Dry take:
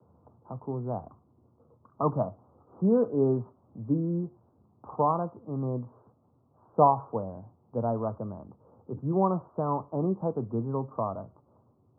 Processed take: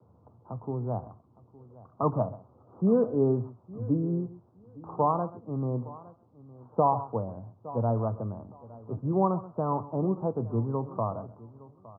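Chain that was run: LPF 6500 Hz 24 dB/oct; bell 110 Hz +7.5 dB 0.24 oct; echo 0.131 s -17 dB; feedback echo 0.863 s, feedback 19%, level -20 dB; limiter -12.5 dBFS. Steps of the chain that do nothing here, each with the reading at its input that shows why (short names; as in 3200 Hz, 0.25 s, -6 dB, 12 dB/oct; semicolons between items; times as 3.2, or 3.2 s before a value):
LPF 6500 Hz: input band ends at 1400 Hz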